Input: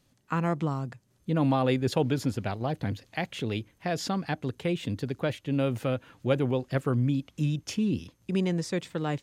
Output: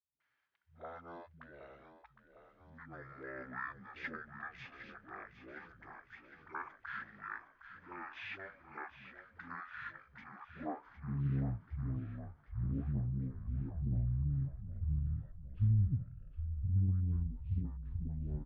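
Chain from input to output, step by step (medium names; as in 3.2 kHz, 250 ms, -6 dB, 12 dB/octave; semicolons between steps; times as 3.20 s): band-pass sweep 3.2 kHz -> 210 Hz, 5.03–5.71 s; phase dispersion highs, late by 102 ms, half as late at 370 Hz; frequency-shifting echo 380 ms, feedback 62%, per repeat -53 Hz, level -11 dB; speed mistake 15 ips tape played at 7.5 ips; loudspeaker Doppler distortion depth 0.56 ms; trim -2.5 dB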